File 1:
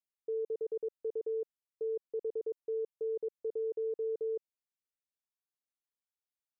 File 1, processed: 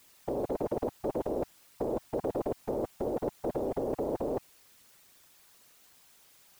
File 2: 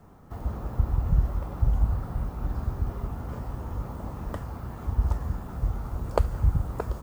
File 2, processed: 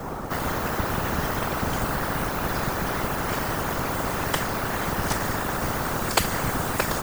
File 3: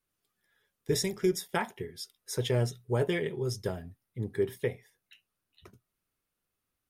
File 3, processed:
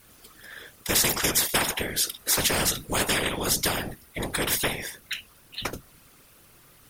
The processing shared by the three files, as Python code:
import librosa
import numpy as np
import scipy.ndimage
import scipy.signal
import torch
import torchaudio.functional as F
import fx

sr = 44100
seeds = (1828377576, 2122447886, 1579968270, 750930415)

y = fx.whisperise(x, sr, seeds[0])
y = fx.spectral_comp(y, sr, ratio=4.0)
y = y * librosa.db_to_amplitude(5.5)